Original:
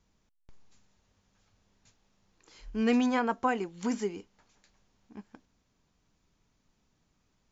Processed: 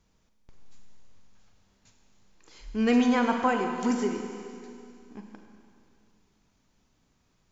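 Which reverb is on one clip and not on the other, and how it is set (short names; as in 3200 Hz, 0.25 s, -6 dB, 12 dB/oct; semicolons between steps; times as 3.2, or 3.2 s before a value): Schroeder reverb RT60 2.5 s, combs from 33 ms, DRR 4 dB; gain +2.5 dB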